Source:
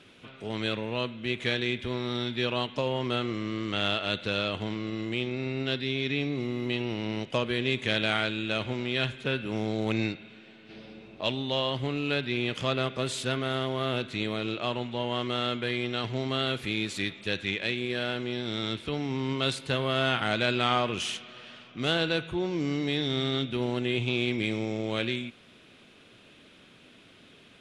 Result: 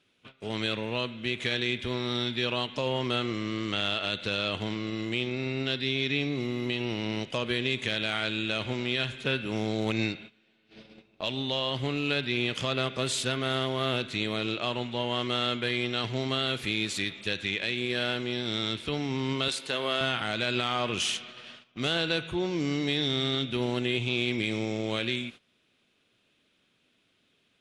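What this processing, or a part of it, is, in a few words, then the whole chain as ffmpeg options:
clipper into limiter: -filter_complex "[0:a]equalizer=frequency=6800:width_type=o:width=2.9:gain=5,asoftclip=type=hard:threshold=-10.5dB,alimiter=limit=-16.5dB:level=0:latency=1:release=99,agate=range=-17dB:threshold=-44dB:ratio=16:detection=peak,asettb=1/sr,asplit=3[link_01][link_02][link_03];[link_01]atrim=end=19.484[link_04];[link_02]atrim=start=19.48:end=20.01,asetpts=PTS-STARTPTS,afade=type=in:duration=0.004:curve=qsin,afade=type=out:start_time=0.526:duration=0.004:curve=qsin,highpass=280[link_05];[link_03]atrim=start=20.006[link_06];[link_04][link_05]acrossfade=duration=0.004:curve1=hsin:curve2=qsin[link_07];[link_07][link_06]acrossfade=duration=0.004:curve1=qsin:curve2=hsin"

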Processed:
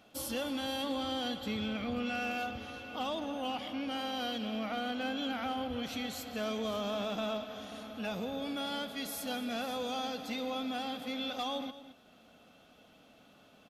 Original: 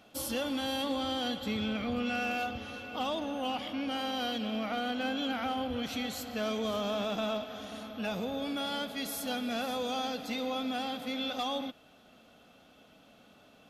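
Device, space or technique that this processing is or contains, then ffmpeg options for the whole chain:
ducked delay: -filter_complex "[0:a]asplit=3[link_01][link_02][link_03];[link_02]adelay=217,volume=-5dB[link_04];[link_03]apad=whole_len=613440[link_05];[link_04][link_05]sidechaincompress=threshold=-45dB:ratio=4:attack=16:release=678[link_06];[link_01][link_06]amix=inputs=2:normalize=0,volume=-2.5dB"

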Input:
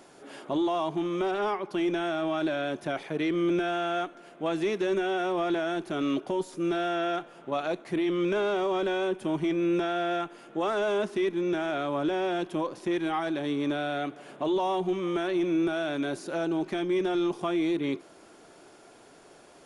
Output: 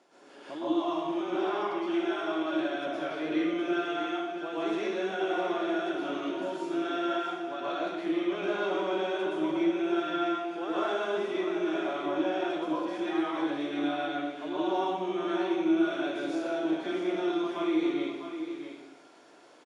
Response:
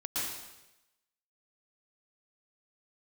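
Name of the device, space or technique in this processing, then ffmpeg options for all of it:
supermarket ceiling speaker: -filter_complex "[0:a]asettb=1/sr,asplit=3[link_01][link_02][link_03];[link_01]atrim=end=1.284[link_04];[link_02]atrim=start=1.28:end=2.46,asetpts=PTS-STARTPTS,afade=type=in:duration=0.004:curve=qsin,afade=type=out:start_time=1.176:duration=0.004:curve=qsin,highpass=200[link_05];[link_03]atrim=start=2.456[link_06];[link_04][link_05]acrossfade=duration=0.004:curve1=hsin:curve2=qsin[link_07];[link_07][link_06]acrossfade=duration=0.004:curve1=qsin:curve2=hsin,highpass=250,lowpass=6400,aecho=1:1:650:0.355[link_08];[1:a]atrim=start_sample=2205[link_09];[link_08][link_09]afir=irnorm=-1:irlink=0,volume=-7dB"

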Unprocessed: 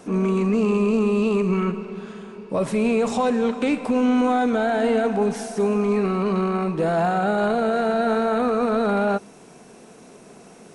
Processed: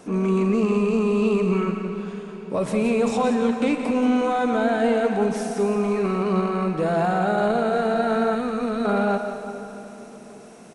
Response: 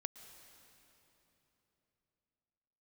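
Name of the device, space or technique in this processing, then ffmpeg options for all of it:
cave: -filter_complex "[0:a]aecho=1:1:174:0.335[link_01];[1:a]atrim=start_sample=2205[link_02];[link_01][link_02]afir=irnorm=-1:irlink=0,asettb=1/sr,asplit=3[link_03][link_04][link_05];[link_03]atrim=end=8.354[link_06];[link_04]atrim=start=8.35:end=8.85,asetpts=PTS-STARTPTS,afade=type=in:duration=0.004:curve=qsin,afade=type=out:start_time=0.496:duration=0.004:curve=qsin,equalizer=frequency=730:width_type=o:width=2.2:gain=-7.5[link_07];[link_05]atrim=start=8.846[link_08];[link_06][link_07]acrossfade=duration=0.004:curve1=hsin:curve2=qsin[link_09];[link_09][link_08]acrossfade=duration=0.004:curve1=qsin:curve2=hsin,volume=2dB"

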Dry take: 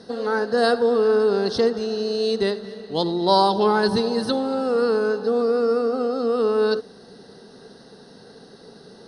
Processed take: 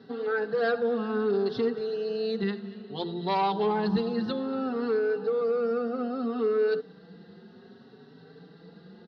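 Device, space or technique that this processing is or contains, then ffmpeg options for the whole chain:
barber-pole flanger into a guitar amplifier: -filter_complex "[0:a]asplit=2[link_01][link_02];[link_02]adelay=4.8,afreqshift=0.62[link_03];[link_01][link_03]amix=inputs=2:normalize=1,asoftclip=type=tanh:threshold=-12.5dB,highpass=94,equalizer=frequency=170:width_type=q:width=4:gain=8,equalizer=frequency=580:width_type=q:width=4:gain=-9,equalizer=frequency=950:width_type=q:width=4:gain=-4,lowpass=frequency=3500:width=0.5412,lowpass=frequency=3500:width=1.3066,volume=-2dB"

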